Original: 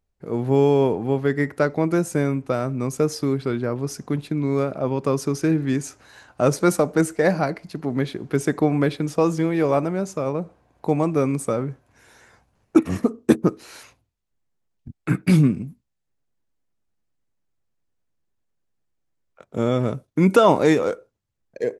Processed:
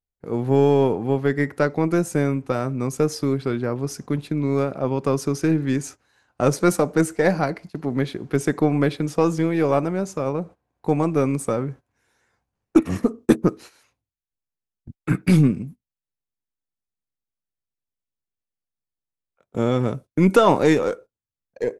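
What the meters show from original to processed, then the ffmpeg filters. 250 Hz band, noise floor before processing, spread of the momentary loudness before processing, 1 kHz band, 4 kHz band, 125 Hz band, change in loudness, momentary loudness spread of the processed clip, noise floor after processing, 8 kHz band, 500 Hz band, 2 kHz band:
0.0 dB, -75 dBFS, 10 LU, +0.5 dB, 0.0 dB, +0.5 dB, 0.0 dB, 10 LU, under -85 dBFS, 0.0 dB, 0.0 dB, +0.5 dB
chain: -af "agate=range=0.178:threshold=0.0126:ratio=16:detection=peak,bandreject=f=630:w=18,aeval=exprs='0.75*(cos(1*acos(clip(val(0)/0.75,-1,1)))-cos(1*PI/2))+0.0211*(cos(6*acos(clip(val(0)/0.75,-1,1)))-cos(6*PI/2))':c=same"

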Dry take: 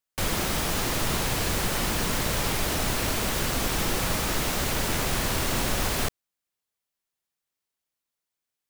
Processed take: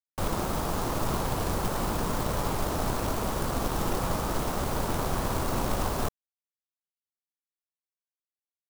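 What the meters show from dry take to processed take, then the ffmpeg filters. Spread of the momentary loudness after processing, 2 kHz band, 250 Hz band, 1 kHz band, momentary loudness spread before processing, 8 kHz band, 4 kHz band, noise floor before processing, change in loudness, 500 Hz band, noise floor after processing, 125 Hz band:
1 LU, -8.5 dB, -1.0 dB, +0.5 dB, 0 LU, -8.5 dB, -10.0 dB, under -85 dBFS, -4.0 dB, 0.0 dB, under -85 dBFS, -1.0 dB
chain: -af "aeval=exprs='sgn(val(0))*max(abs(val(0))-0.0075,0)':c=same,highshelf=f=1500:t=q:w=1.5:g=-9,acrusher=bits=3:mode=log:mix=0:aa=0.000001"

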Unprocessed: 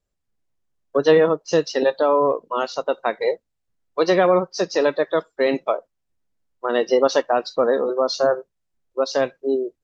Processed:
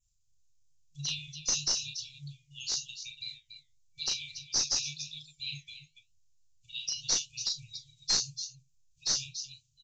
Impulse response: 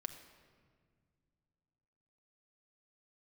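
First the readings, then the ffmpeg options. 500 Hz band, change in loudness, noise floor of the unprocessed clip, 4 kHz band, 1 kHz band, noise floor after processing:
-40.0 dB, -12.0 dB, -76 dBFS, +1.0 dB, -29.5 dB, -71 dBFS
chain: -filter_complex "[0:a]firequalizer=gain_entry='entry(110,0);entry(200,-8);entry(850,-14);entry(6200,2)':delay=0.05:min_phase=1,aecho=1:1:34.99|285.7:0.708|0.282,adynamicequalizer=threshold=0.00501:dfrequency=4400:dqfactor=3.8:tfrequency=4400:tqfactor=3.8:attack=5:release=100:ratio=0.375:range=1.5:mode=cutabove:tftype=bell,asplit=2[s0][s1];[s1]acompressor=threshold=0.0141:ratio=6,volume=0.794[s2];[s0][s2]amix=inputs=2:normalize=0,afftfilt=real='re*(1-between(b*sr/4096,160,2300))':imag='im*(1-between(b*sr/4096,160,2300))':win_size=4096:overlap=0.75,crystalizer=i=2.5:c=0,flanger=delay=4.5:depth=9.2:regen=-77:speed=0.93:shape=triangular,aresample=16000,aeval=exprs='clip(val(0),-1,0.0501)':c=same,aresample=44100"

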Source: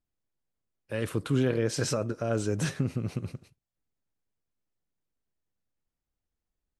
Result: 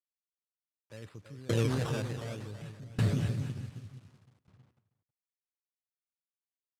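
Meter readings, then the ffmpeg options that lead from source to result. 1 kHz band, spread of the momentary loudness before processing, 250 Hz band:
-4.0 dB, 11 LU, -5.5 dB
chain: -filter_complex "[0:a]acrusher=samples=14:mix=1:aa=0.000001:lfo=1:lforange=14:lforate=0.63,asubboost=boost=6:cutoff=150,asplit=2[s0][s1];[s1]aecho=0:1:330|594|805.2|974.2|1109:0.631|0.398|0.251|0.158|0.1[s2];[s0][s2]amix=inputs=2:normalize=0,acrusher=bits=7:mix=0:aa=0.000001,lowpass=9600,alimiter=limit=0.141:level=0:latency=1:release=18,highpass=88,asplit=2[s3][s4];[s4]adelay=319,lowpass=f=3600:p=1,volume=0.133,asplit=2[s5][s6];[s6]adelay=319,lowpass=f=3600:p=1,volume=0.23[s7];[s5][s7]amix=inputs=2:normalize=0[s8];[s3][s8]amix=inputs=2:normalize=0,aeval=exprs='val(0)*pow(10,-24*if(lt(mod(0.67*n/s,1),2*abs(0.67)/1000),1-mod(0.67*n/s,1)/(2*abs(0.67)/1000),(mod(0.67*n/s,1)-2*abs(0.67)/1000)/(1-2*abs(0.67)/1000))/20)':c=same"

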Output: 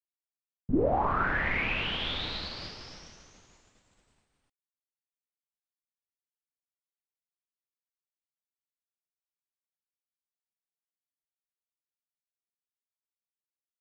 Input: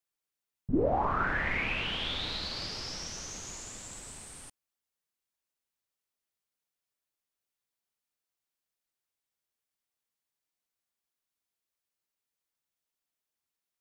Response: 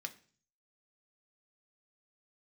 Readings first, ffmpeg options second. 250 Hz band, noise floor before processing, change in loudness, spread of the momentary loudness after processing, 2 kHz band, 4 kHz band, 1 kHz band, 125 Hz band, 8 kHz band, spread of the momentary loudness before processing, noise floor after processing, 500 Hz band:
+1.5 dB, under -85 dBFS, +3.0 dB, 19 LU, +1.5 dB, -0.5 dB, +1.5 dB, +1.5 dB, -16.5 dB, 16 LU, under -85 dBFS, +1.5 dB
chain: -filter_complex "[0:a]lowpass=4400,agate=range=0.0224:threshold=0.0224:ratio=3:detection=peak,asplit=2[s0][s1];[s1]acompressor=threshold=0.0126:ratio=6,volume=0.794[s2];[s0][s2]amix=inputs=2:normalize=0"

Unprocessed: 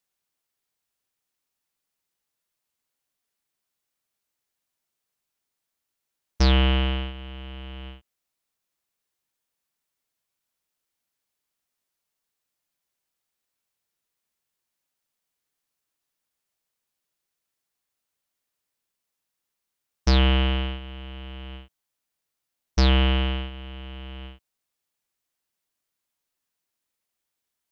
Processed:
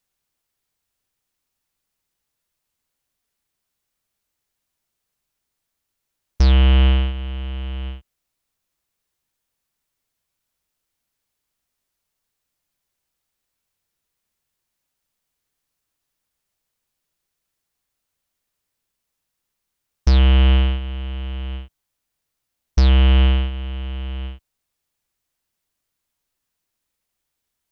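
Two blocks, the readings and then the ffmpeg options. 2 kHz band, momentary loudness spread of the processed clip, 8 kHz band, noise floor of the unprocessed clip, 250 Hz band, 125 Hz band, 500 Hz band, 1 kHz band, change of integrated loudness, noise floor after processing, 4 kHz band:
0.0 dB, 17 LU, no reading, -83 dBFS, +2.0 dB, +8.0 dB, +0.5 dB, 0.0 dB, +4.5 dB, -80 dBFS, 0.0 dB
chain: -af "alimiter=limit=0.158:level=0:latency=1,lowshelf=f=110:g=11.5,volume=1.5"

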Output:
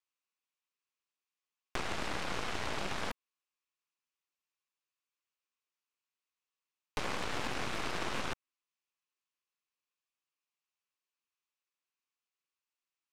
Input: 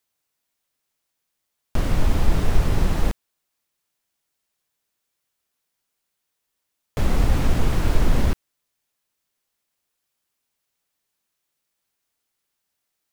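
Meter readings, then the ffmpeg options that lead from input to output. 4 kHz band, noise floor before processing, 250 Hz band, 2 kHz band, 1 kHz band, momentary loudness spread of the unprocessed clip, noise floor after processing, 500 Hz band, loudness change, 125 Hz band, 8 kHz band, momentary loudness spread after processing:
-3.5 dB, -79 dBFS, -16.5 dB, -3.5 dB, -6.0 dB, 9 LU, under -85 dBFS, -10.5 dB, -14.0 dB, -24.5 dB, -7.5 dB, 6 LU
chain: -filter_complex "[0:a]highpass=290,equalizer=f=670:t=q:w=4:g=-8,equalizer=f=1100:t=q:w=4:g=8,equalizer=f=2600:t=q:w=4:g=8,lowpass=f=7700:w=0.5412,lowpass=f=7700:w=1.3066,aeval=exprs='0.188*(cos(1*acos(clip(val(0)/0.188,-1,1)))-cos(1*PI/2))+0.0335*(cos(7*acos(clip(val(0)/0.188,-1,1)))-cos(7*PI/2))+0.0422*(cos(8*acos(clip(val(0)/0.188,-1,1)))-cos(8*PI/2))':c=same,acrossover=split=1700|4200[s0][s1][s2];[s0]acompressor=threshold=0.0355:ratio=4[s3];[s1]acompressor=threshold=0.00891:ratio=4[s4];[s2]acompressor=threshold=0.00447:ratio=4[s5];[s3][s4][s5]amix=inputs=3:normalize=0,volume=0.708"

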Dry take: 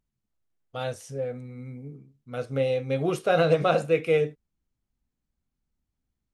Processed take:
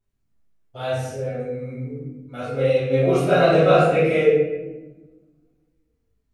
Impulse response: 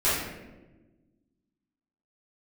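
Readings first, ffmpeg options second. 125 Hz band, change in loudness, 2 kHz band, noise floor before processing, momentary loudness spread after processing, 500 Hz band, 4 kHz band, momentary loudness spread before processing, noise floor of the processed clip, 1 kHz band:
+7.0 dB, +6.5 dB, +6.0 dB, -83 dBFS, 17 LU, +7.0 dB, +4.5 dB, 19 LU, -71 dBFS, +7.0 dB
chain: -filter_complex "[0:a]flanger=delay=20:depth=2.9:speed=0.81[s0];[1:a]atrim=start_sample=2205[s1];[s0][s1]afir=irnorm=-1:irlink=0,volume=0.596"

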